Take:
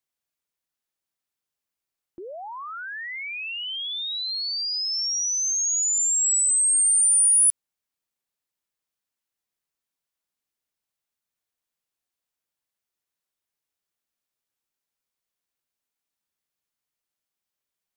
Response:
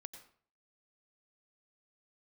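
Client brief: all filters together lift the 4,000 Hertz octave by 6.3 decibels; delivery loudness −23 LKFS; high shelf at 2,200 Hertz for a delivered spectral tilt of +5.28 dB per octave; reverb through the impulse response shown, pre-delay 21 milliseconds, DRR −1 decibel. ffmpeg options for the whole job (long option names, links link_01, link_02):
-filter_complex "[0:a]highshelf=frequency=2200:gain=3.5,equalizer=frequency=4000:width_type=o:gain=4.5,asplit=2[link_01][link_02];[1:a]atrim=start_sample=2205,adelay=21[link_03];[link_02][link_03]afir=irnorm=-1:irlink=0,volume=6.5dB[link_04];[link_01][link_04]amix=inputs=2:normalize=0,volume=-11.5dB"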